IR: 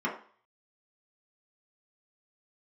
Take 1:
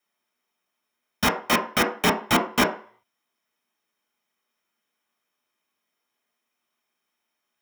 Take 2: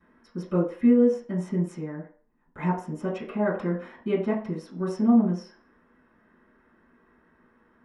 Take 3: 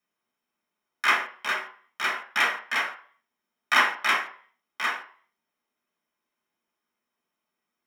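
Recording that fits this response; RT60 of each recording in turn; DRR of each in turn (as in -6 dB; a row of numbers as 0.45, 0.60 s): 3; 0.45, 0.45, 0.45 s; 0.5, -15.0, -5.0 dB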